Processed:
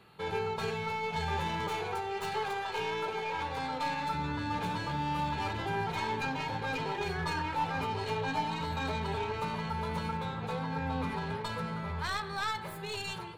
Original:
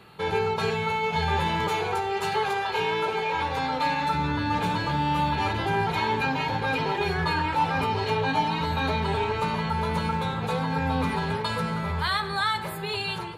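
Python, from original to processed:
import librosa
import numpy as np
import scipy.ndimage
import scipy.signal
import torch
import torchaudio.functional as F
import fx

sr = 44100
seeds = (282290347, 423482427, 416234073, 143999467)

y = fx.tracing_dist(x, sr, depth_ms=0.062)
y = fx.high_shelf(y, sr, hz=6100.0, db=-6.0, at=(10.17, 12.65))
y = F.gain(torch.from_numpy(y), -8.0).numpy()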